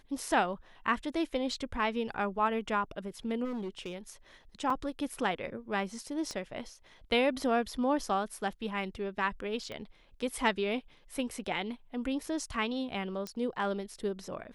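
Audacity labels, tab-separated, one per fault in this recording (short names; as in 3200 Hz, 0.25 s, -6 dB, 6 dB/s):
3.440000	3.960000	clipped -33.5 dBFS
4.700000	4.700000	gap 3.3 ms
6.310000	6.310000	pop -26 dBFS
9.720000	9.720000	pop -27 dBFS
13.270000	13.270000	pop -23 dBFS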